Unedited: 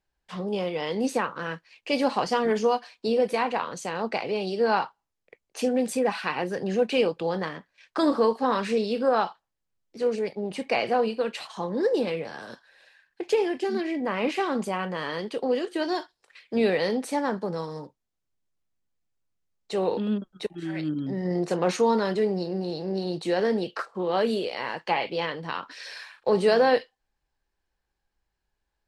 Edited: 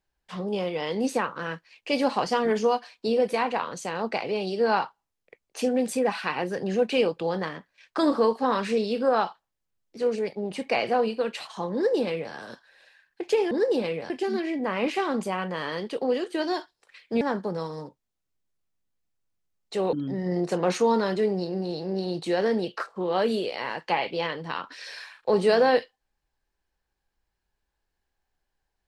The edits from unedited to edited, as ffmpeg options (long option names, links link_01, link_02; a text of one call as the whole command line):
ffmpeg -i in.wav -filter_complex "[0:a]asplit=5[link_01][link_02][link_03][link_04][link_05];[link_01]atrim=end=13.512[link_06];[link_02]atrim=start=11.738:end=12.332[link_07];[link_03]atrim=start=13.508:end=16.622[link_08];[link_04]atrim=start=17.188:end=19.912[link_09];[link_05]atrim=start=20.918[link_10];[link_06][link_07]acrossfade=duration=0.004:curve1=hsin:curve2=hsin[link_11];[link_11][link_08]acrossfade=duration=0.004:curve1=hsin:curve2=hsin[link_12];[link_12][link_09]acrossfade=duration=0.004:curve1=hsin:curve2=hsin[link_13];[link_13][link_10]acrossfade=duration=0.004:curve1=hsin:curve2=hsin" out.wav